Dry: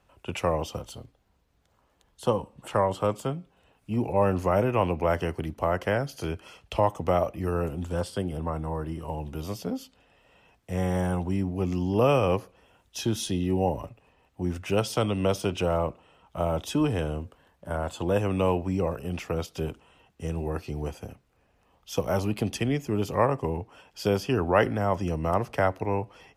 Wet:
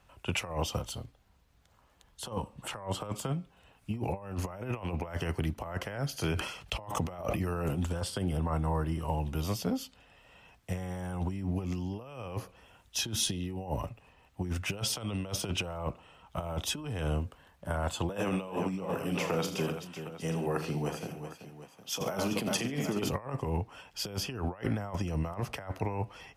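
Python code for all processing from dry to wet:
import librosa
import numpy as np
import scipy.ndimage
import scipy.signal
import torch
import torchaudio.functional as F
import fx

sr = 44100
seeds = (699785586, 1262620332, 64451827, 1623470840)

y = fx.chain(x, sr, fx.peak_eq(hz=75.0, db=-11.5, octaves=0.21),
    fx.sustainer(db_per_s=75.0), at=(6.16, 7.86))
y = fx.chain(y, sr, fx.highpass(hz=150.0, slope=24),
    fx.echo_multitap(ms=(41, 80, 139, 381, 759), db=(-11.0, -11.5, -17.5, -10.0, -14.5)), at=(18.09, 23.09))
y = fx.peak_eq(y, sr, hz=390.0, db=-5.5, octaves=1.8)
y = fx.over_compress(y, sr, threshold_db=-32.0, ratio=-0.5)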